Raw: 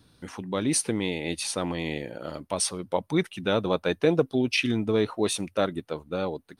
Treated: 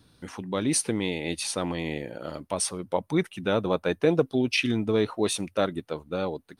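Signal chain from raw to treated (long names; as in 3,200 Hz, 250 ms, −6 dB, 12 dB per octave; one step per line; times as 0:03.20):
0:01.79–0:04.08: dynamic equaliser 4,000 Hz, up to −4 dB, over −46 dBFS, Q 1.1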